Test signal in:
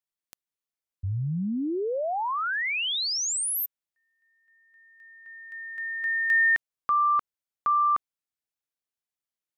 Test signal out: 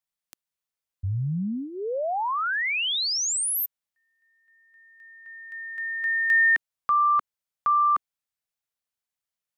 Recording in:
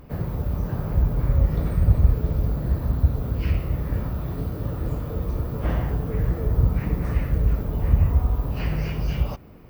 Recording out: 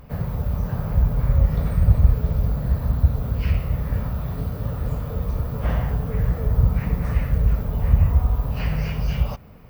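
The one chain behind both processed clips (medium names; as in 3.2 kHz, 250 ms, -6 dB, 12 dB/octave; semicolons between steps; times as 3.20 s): peaking EQ 330 Hz -13 dB 0.44 oct; trim +2 dB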